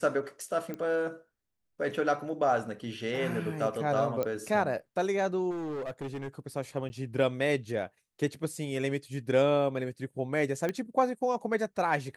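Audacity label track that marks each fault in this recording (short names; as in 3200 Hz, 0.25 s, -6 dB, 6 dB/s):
0.740000	0.740000	pop -24 dBFS
4.230000	4.230000	pop -18 dBFS
5.500000	6.280000	clipped -32.5 dBFS
6.890000	6.900000	gap 10 ms
10.690000	10.690000	pop -18 dBFS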